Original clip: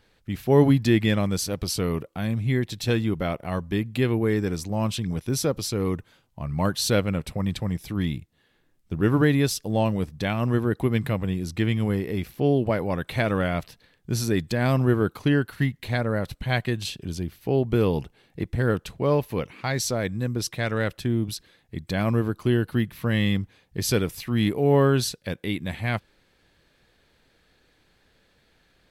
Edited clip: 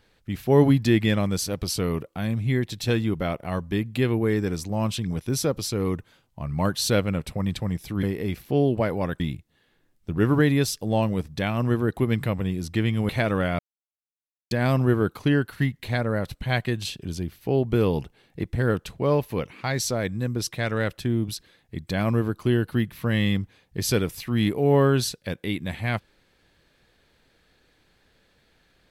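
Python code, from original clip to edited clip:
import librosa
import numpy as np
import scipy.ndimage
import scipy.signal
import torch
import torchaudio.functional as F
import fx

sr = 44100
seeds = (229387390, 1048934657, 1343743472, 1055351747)

y = fx.edit(x, sr, fx.move(start_s=11.92, length_s=1.17, to_s=8.03),
    fx.silence(start_s=13.59, length_s=0.92), tone=tone)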